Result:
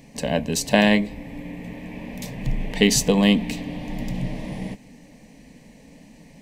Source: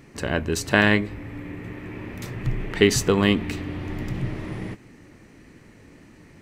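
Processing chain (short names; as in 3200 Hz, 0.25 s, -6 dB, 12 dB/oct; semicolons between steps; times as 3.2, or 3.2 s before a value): fixed phaser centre 360 Hz, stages 6; gain +5 dB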